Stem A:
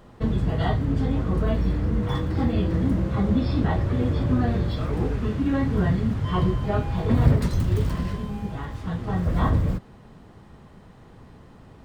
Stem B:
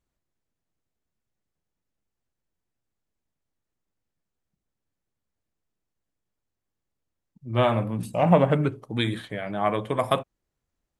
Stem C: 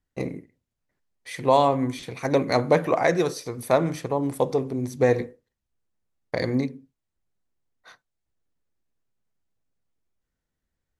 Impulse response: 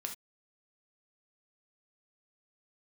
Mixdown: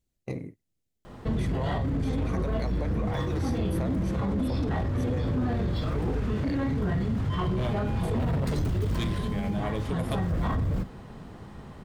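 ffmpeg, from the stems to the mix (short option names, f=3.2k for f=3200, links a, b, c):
-filter_complex "[0:a]adelay=1050,volume=2dB,asplit=2[a][b];[b]volume=-9dB[c];[1:a]equalizer=f=1.1k:w=0.77:g=-13.5,volume=3dB[d];[2:a]agate=range=-21dB:threshold=-39dB:ratio=16:detection=peak,equalizer=f=93:w=1.3:g=11.5,acompressor=threshold=-23dB:ratio=6,adelay=100,volume=-5.5dB[e];[a][d]amix=inputs=2:normalize=0,asoftclip=type=hard:threshold=-17.5dB,acompressor=threshold=-25dB:ratio=6,volume=0dB[f];[3:a]atrim=start_sample=2205[g];[c][g]afir=irnorm=-1:irlink=0[h];[e][f][h]amix=inputs=3:normalize=0,alimiter=limit=-21.5dB:level=0:latency=1:release=29"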